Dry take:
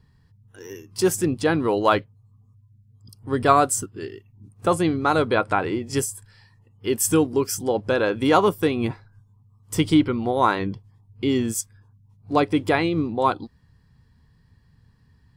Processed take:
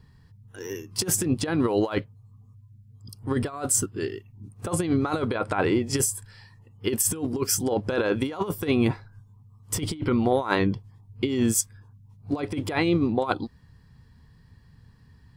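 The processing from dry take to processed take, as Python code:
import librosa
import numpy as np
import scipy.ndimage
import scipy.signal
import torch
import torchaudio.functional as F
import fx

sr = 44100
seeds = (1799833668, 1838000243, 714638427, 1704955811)

y = fx.over_compress(x, sr, threshold_db=-23.0, ratio=-0.5)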